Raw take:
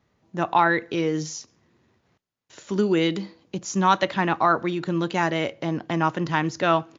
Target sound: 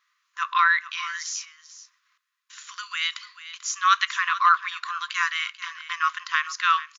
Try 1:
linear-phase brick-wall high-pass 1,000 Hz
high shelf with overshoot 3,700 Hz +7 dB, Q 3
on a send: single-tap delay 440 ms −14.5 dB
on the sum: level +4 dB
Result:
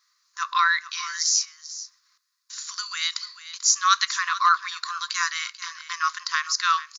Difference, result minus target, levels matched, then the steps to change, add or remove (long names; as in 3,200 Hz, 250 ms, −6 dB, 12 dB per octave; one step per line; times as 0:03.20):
8,000 Hz band +9.5 dB
remove: high shelf with overshoot 3,700 Hz +7 dB, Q 3